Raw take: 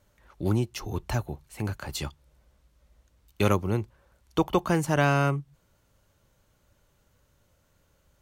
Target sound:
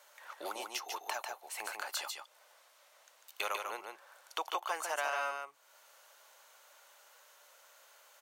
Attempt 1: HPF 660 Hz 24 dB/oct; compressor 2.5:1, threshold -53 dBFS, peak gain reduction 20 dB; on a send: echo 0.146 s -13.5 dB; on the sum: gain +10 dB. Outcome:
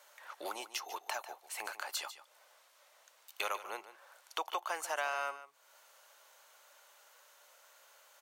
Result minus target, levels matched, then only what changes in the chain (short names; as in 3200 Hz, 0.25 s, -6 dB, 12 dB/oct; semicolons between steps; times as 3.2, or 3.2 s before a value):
echo-to-direct -9 dB
change: echo 0.146 s -4.5 dB